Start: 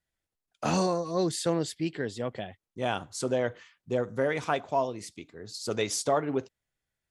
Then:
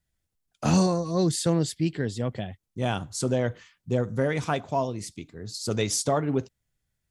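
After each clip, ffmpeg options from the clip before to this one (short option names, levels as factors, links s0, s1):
-af "bass=f=250:g=11,treble=f=4000:g=5"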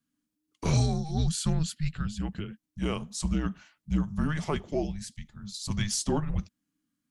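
-af "afreqshift=-310,volume=0.708"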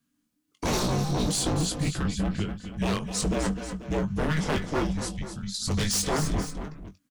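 -filter_complex "[0:a]aeval=exprs='0.0473*(abs(mod(val(0)/0.0473+3,4)-2)-1)':c=same,asplit=2[s0][s1];[s1]adelay=21,volume=0.398[s2];[s0][s2]amix=inputs=2:normalize=0,asplit=2[s3][s4];[s4]aecho=0:1:251|255|487:0.188|0.282|0.188[s5];[s3][s5]amix=inputs=2:normalize=0,volume=1.88"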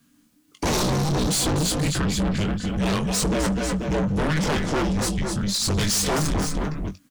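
-filter_complex "[0:a]asplit=2[s0][s1];[s1]alimiter=level_in=1.5:limit=0.0631:level=0:latency=1:release=210,volume=0.668,volume=1.06[s2];[s0][s2]amix=inputs=2:normalize=0,asoftclip=type=tanh:threshold=0.0376,volume=2.66"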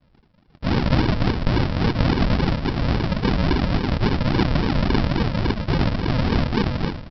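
-af "lowpass=f=3100:t=q:w=0.5098,lowpass=f=3100:t=q:w=0.6013,lowpass=f=3100:t=q:w=0.9,lowpass=f=3100:t=q:w=2.563,afreqshift=-3700,aecho=1:1:115|230|345|460|575:0.398|0.179|0.0806|0.0363|0.0163,aresample=11025,acrusher=samples=23:mix=1:aa=0.000001:lfo=1:lforange=13.8:lforate=3.6,aresample=44100,volume=1.41"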